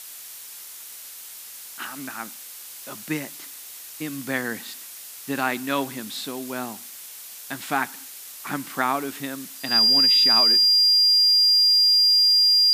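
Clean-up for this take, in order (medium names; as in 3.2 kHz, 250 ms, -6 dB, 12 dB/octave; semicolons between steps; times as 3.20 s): band-stop 4.8 kHz, Q 30; noise print and reduce 26 dB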